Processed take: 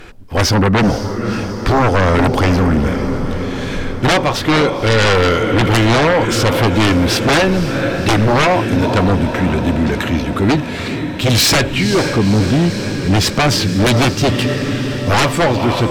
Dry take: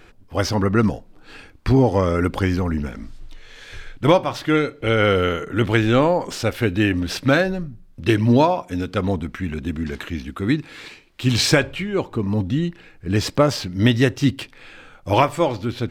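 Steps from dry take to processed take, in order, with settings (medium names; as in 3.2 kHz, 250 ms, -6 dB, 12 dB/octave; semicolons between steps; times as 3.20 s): echo that smears into a reverb 508 ms, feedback 68%, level -12.5 dB; sine folder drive 14 dB, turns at -2 dBFS; trim -6.5 dB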